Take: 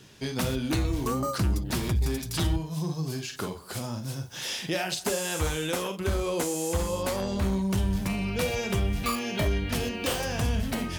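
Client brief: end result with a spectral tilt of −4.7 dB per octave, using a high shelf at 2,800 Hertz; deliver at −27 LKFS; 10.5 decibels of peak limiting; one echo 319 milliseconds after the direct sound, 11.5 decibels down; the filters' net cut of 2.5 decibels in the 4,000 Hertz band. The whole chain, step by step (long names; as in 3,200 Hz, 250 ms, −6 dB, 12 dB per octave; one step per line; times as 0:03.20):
high-shelf EQ 2,800 Hz +3 dB
parametric band 4,000 Hz −6 dB
brickwall limiter −26 dBFS
single-tap delay 319 ms −11.5 dB
level +7.5 dB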